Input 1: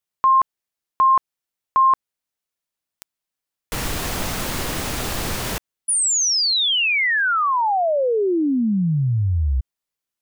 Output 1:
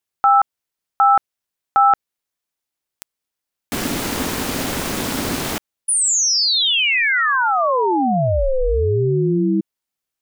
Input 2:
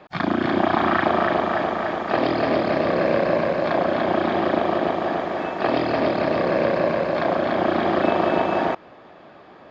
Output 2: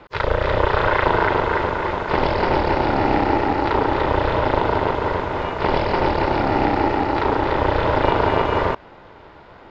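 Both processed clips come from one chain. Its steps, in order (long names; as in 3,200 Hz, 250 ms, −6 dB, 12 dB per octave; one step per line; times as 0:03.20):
ring modulation 260 Hz
level +5 dB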